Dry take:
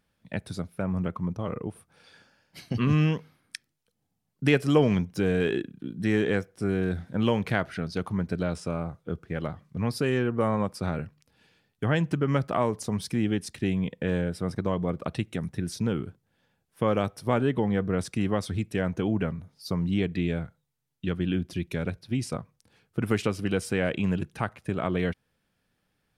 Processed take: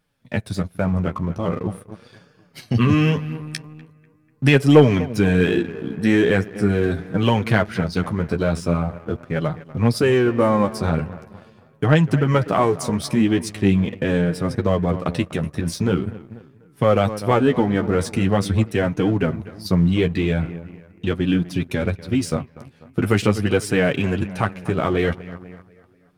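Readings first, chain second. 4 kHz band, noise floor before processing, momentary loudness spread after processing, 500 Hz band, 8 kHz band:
+8.0 dB, −76 dBFS, 11 LU, +8.5 dB, +8.0 dB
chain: bucket-brigade delay 245 ms, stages 4,096, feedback 53%, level −16 dB
flanger 0.42 Hz, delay 6.3 ms, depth 7.7 ms, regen +15%
leveller curve on the samples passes 1
level +8 dB

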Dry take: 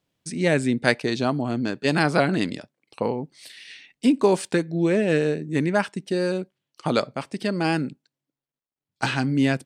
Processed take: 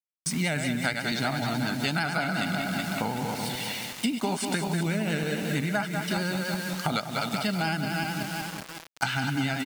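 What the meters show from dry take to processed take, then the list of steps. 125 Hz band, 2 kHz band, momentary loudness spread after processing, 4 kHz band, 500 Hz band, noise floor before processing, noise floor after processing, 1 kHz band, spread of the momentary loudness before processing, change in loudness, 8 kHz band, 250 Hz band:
−2.5 dB, −1.0 dB, 4 LU, +1.5 dB, −10.0 dB, below −85 dBFS, −46 dBFS, −1.5 dB, 13 LU, −5.0 dB, +4.0 dB, −5.5 dB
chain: feedback delay that plays each chunk backwards 187 ms, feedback 60%, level −7 dB
parametric band 530 Hz −14 dB 0.57 octaves
comb filter 1.4 ms, depth 63%
repeating echo 192 ms, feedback 35%, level −10 dB
bit reduction 7 bits
pitch vibrato 11 Hz 46 cents
low-shelf EQ 120 Hz −9 dB
downward compressor 6 to 1, threshold −31 dBFS, peak gain reduction 15.5 dB
level +6 dB

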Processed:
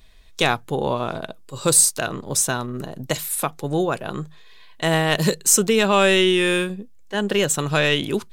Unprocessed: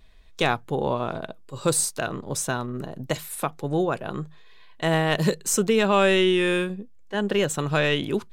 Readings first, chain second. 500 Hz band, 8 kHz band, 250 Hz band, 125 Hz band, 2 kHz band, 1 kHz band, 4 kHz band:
+2.0 dB, +9.0 dB, +2.0 dB, +2.0 dB, +4.0 dB, +2.5 dB, +6.0 dB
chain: high-shelf EQ 3,600 Hz +8.5 dB
level +2 dB

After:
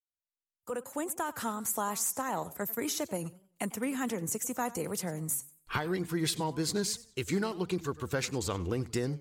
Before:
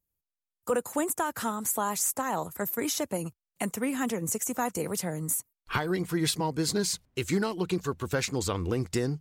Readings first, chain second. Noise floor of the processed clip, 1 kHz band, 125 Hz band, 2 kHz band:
below −85 dBFS, −3.5 dB, −3.5 dB, −3.5 dB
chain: fade in at the beginning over 1.41 s
feedback echo with a swinging delay time 95 ms, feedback 31%, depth 186 cents, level −18.5 dB
level −3.5 dB

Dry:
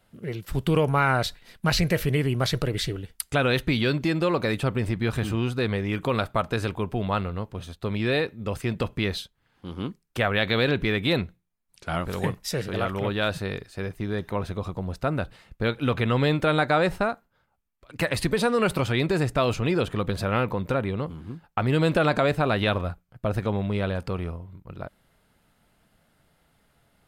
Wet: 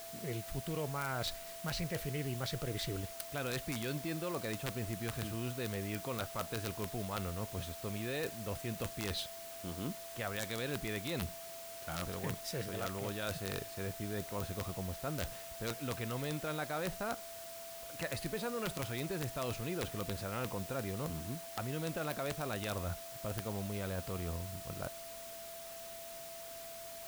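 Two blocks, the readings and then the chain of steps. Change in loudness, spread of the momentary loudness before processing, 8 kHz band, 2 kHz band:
−13.5 dB, 12 LU, −2.5 dB, −14.5 dB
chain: reversed playback
downward compressor 5 to 1, threshold −35 dBFS, peak gain reduction 16.5 dB
reversed playback
steady tone 670 Hz −46 dBFS
bit-depth reduction 8 bits, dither triangular
wrap-around overflow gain 25 dB
level −2 dB

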